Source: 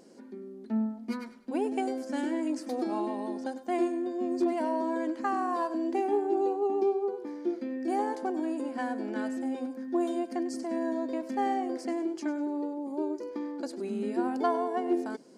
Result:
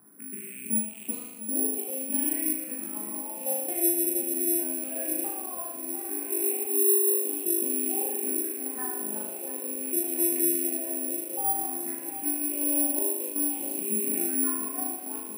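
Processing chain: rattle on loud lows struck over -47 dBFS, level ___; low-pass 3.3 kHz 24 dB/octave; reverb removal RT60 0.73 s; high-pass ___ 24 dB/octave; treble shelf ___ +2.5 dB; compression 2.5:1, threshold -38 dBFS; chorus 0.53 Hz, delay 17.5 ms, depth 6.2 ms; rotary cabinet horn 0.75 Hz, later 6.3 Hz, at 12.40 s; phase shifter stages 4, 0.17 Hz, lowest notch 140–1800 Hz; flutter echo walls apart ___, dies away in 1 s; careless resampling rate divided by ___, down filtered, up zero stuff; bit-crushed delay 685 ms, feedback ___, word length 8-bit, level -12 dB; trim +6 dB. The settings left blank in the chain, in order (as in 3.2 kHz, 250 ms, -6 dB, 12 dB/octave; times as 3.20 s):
-33 dBFS, 92 Hz, 2.4 kHz, 6.5 m, 4×, 80%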